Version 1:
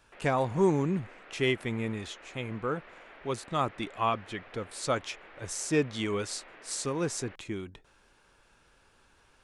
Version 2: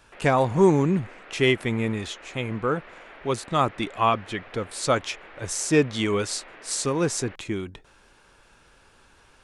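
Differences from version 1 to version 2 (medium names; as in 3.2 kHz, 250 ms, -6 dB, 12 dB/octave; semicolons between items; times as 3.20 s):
speech +7.0 dB; background +5.5 dB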